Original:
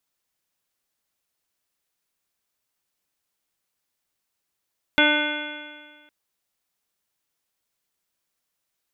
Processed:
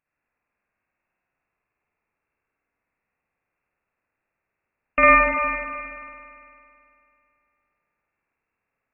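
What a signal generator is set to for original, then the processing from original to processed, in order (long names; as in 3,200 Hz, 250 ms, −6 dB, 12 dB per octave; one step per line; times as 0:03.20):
stiff-string partials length 1.11 s, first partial 297 Hz, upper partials −1.5/−4/−13/3.5/−16/1/−5/−6/−14.5/1 dB, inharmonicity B 0.00068, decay 1.64 s, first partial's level −21 dB
spring reverb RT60 2.6 s, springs 50 ms, chirp 70 ms, DRR −6 dB
voice inversion scrambler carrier 2,700 Hz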